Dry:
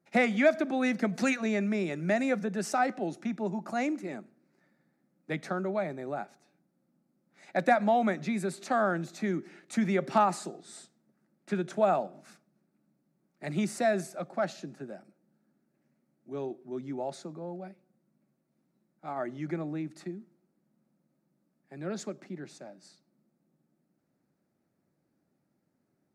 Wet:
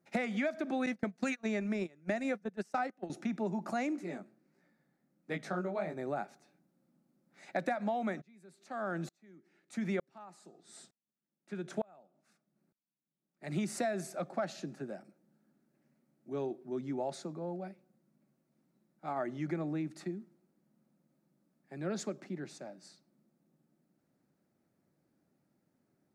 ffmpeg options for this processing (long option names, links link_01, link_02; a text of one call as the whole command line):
ffmpeg -i in.wav -filter_complex "[0:a]asettb=1/sr,asplit=3[link_01][link_02][link_03];[link_01]atrim=end=0.864[link_04];[link_02]atrim=start=0.86:end=3.1,asetpts=PTS-STARTPTS,afade=type=in:duration=0.004:curve=qsin,afade=type=out:start_time=2.236:duration=0.004:curve=qsin,agate=range=-26dB:threshold=-30dB:ratio=16:release=100:detection=peak[link_05];[link_03]atrim=start=3.096[link_06];[link_04][link_05]acrossfade=duration=0.004:curve1=hsin:curve2=qsin[link_07];[link_07][link_06]acrossfade=duration=0.004:curve1=qsin:curve2=hsin,asplit=3[link_08][link_09][link_10];[link_08]afade=type=out:start_time=3.95:duration=0.02[link_11];[link_09]flanger=delay=17:depth=5.7:speed=1.5,afade=type=in:start_time=3.95:duration=0.02,afade=type=out:start_time=5.95:duration=0.02[link_12];[link_10]afade=type=in:start_time=5.95:duration=0.02[link_13];[link_11][link_12][link_13]amix=inputs=3:normalize=0,asplit=3[link_14][link_15][link_16];[link_14]afade=type=out:start_time=8.2:duration=0.02[link_17];[link_15]aeval=exprs='val(0)*pow(10,-36*if(lt(mod(-1.1*n/s,1),2*abs(-1.1)/1000),1-mod(-1.1*n/s,1)/(2*abs(-1.1)/1000),(mod(-1.1*n/s,1)-2*abs(-1.1)/1000)/(1-2*abs(-1.1)/1000))/20)':channel_layout=same,afade=type=in:start_time=8.2:duration=0.02,afade=type=out:start_time=13.51:duration=0.02[link_18];[link_16]afade=type=in:start_time=13.51:duration=0.02[link_19];[link_17][link_18][link_19]amix=inputs=3:normalize=0,acompressor=threshold=-30dB:ratio=12" out.wav